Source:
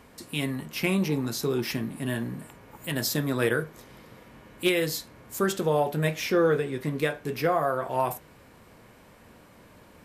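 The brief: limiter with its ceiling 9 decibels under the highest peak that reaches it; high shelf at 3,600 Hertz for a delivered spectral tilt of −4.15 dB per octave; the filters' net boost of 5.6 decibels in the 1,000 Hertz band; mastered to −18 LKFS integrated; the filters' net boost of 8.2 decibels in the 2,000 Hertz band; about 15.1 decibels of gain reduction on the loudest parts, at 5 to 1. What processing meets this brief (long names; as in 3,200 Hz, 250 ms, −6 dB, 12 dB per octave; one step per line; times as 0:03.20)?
parametric band 1,000 Hz +5 dB
parametric band 2,000 Hz +8 dB
high-shelf EQ 3,600 Hz +3 dB
downward compressor 5 to 1, threshold −34 dBFS
level +21.5 dB
brickwall limiter −6.5 dBFS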